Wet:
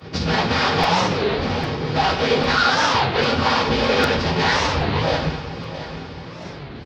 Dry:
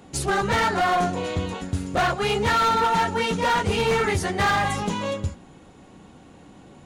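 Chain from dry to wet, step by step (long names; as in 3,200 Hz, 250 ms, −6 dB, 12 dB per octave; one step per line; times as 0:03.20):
each half-wave held at its own peak
in parallel at +3 dB: downward compressor 5 to 1, threshold −33 dBFS, peak gain reduction 13 dB
on the sum: brickwall limiter −16.5 dBFS, peak gain reduction 4.5 dB
high-shelf EQ 4,600 Hz +7.5 dB
cochlear-implant simulation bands 16
phase-vocoder pitch shift with formants kept −11.5 semitones
pitch vibrato 14 Hz 5.3 cents
repeating echo 671 ms, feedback 46%, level −13 dB
on a send at −2 dB: convolution reverb RT60 0.60 s, pre-delay 3 ms
on the sum: regular buffer underruns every 0.80 s, samples 256, repeat, from 0:00.83
wow of a warped record 33 1/3 rpm, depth 250 cents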